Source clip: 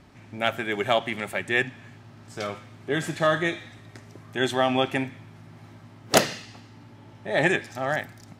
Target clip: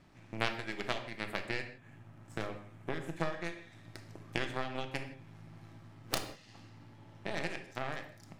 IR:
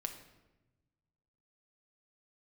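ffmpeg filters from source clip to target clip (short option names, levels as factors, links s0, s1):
-filter_complex "[0:a]asettb=1/sr,asplit=3[s0][s1][s2];[s0]atrim=end=0.994[s3];[s1]atrim=start=0.99:end=3.19,asetpts=PTS-STARTPTS,afade=t=in:d=0.004:c=qsin,afade=t=out:st=2.196:d=0.004:c=qsin,equalizer=f=4600:t=o:w=1.1:g=-10[s4];[s2]atrim=start=3.186[s5];[s3][s4]acrossfade=d=0.004:c1=hsin:c2=qsin[s6];[s6][s5]acrossfade=d=0.004:c1=qsin:c2=hsin,acompressor=threshold=0.0178:ratio=10,aeval=exprs='0.141*(cos(1*acos(clip(val(0)/0.141,-1,1)))-cos(1*PI/2))+0.0708*(cos(2*acos(clip(val(0)/0.141,-1,1)))-cos(2*PI/2))+0.0158*(cos(7*acos(clip(val(0)/0.141,-1,1)))-cos(7*PI/2))+0.001*(cos(8*acos(clip(val(0)/0.141,-1,1)))-cos(8*PI/2))':c=same[s7];[1:a]atrim=start_sample=2205,afade=t=out:st=0.23:d=0.01,atrim=end_sample=10584[s8];[s7][s8]afir=irnorm=-1:irlink=0,volume=2"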